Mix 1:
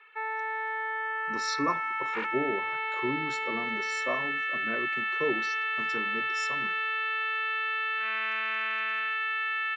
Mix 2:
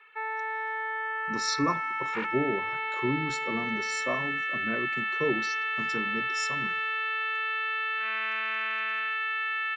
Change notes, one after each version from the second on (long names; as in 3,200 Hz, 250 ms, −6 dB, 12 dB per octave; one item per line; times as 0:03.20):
speech: add bass and treble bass +9 dB, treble +6 dB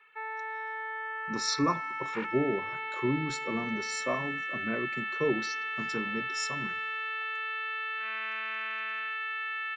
background −4.5 dB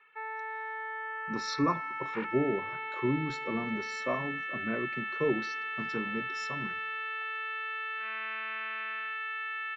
master: add high-frequency loss of the air 170 metres